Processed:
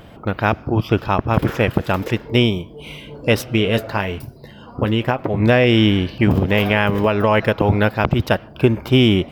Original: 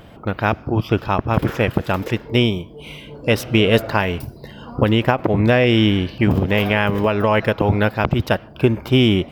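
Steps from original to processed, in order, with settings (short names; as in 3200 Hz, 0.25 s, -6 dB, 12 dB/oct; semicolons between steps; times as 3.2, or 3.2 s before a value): 3.42–5.42 flange 1.1 Hz, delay 7.3 ms, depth 3.7 ms, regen -52%; gain +1 dB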